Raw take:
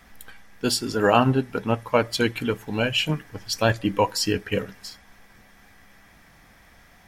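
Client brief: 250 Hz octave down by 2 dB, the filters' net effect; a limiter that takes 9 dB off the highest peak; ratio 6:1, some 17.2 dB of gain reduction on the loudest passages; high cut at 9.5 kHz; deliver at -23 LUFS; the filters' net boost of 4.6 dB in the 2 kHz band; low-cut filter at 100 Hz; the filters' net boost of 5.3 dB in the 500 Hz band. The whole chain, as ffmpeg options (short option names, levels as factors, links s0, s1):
-af "highpass=100,lowpass=9500,equalizer=f=250:t=o:g=-4.5,equalizer=f=500:t=o:g=7,equalizer=f=2000:t=o:g=6,acompressor=threshold=0.0398:ratio=6,volume=3.76,alimiter=limit=0.316:level=0:latency=1"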